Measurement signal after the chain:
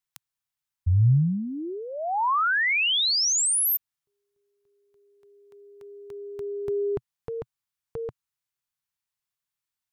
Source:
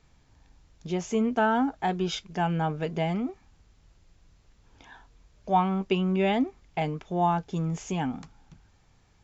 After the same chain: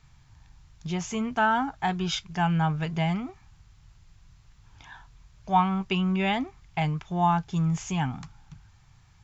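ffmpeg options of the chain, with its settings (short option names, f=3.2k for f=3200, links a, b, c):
-af "equalizer=f=125:t=o:w=1:g=8,equalizer=f=250:t=o:w=1:g=-8,equalizer=f=500:t=o:w=1:g=-12,equalizer=f=1k:t=o:w=1:g=3,volume=3.5dB"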